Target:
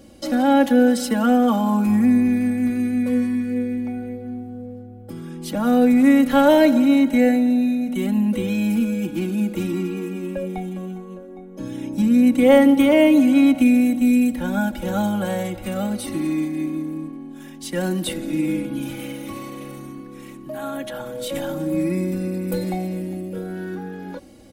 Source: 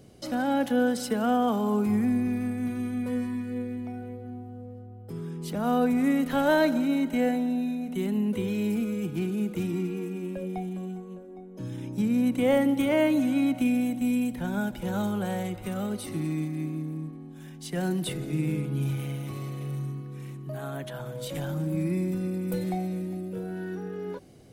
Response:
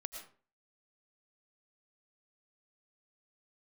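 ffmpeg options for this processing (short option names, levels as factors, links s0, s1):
-af "aecho=1:1:3.6:0.83,volume=1.78"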